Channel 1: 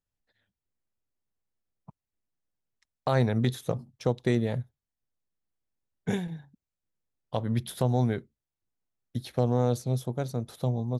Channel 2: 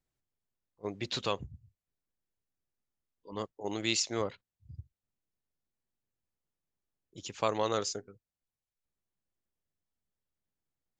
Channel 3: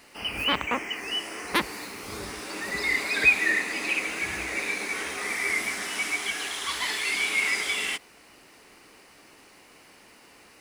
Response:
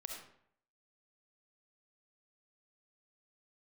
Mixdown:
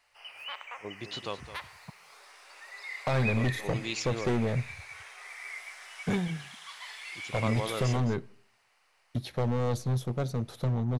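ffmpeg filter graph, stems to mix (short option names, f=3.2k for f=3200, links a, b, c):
-filter_complex "[0:a]volume=26.5dB,asoftclip=hard,volume=-26.5dB,volume=2dB,asplit=2[a][b];[b]volume=-19.5dB[c];[1:a]volume=-4dB,asplit=2[d][e];[e]volume=-12.5dB[f];[2:a]highpass=f=630:w=0.5412,highpass=f=630:w=1.3066,volume=-16.5dB,asplit=2[g][h];[h]volume=-4.5dB[i];[3:a]atrim=start_sample=2205[j];[c][i]amix=inputs=2:normalize=0[k];[k][j]afir=irnorm=-1:irlink=0[l];[f]aecho=0:1:213:1[m];[a][d][g][l][m]amix=inputs=5:normalize=0,highshelf=f=8.6k:g=-9.5"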